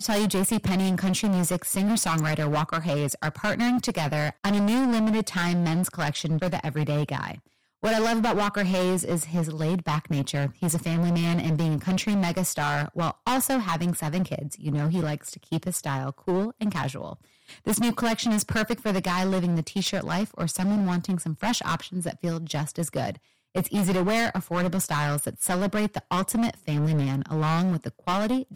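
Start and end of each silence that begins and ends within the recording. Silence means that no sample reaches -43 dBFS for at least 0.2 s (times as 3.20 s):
7.39–7.83 s
17.15–17.49 s
23.17–23.55 s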